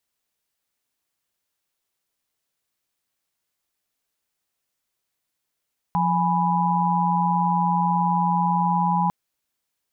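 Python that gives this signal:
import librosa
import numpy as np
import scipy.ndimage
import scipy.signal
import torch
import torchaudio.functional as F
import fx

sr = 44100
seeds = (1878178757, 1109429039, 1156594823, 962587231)

y = fx.chord(sr, length_s=3.15, notes=(53, 80, 83), wave='sine', level_db=-22.5)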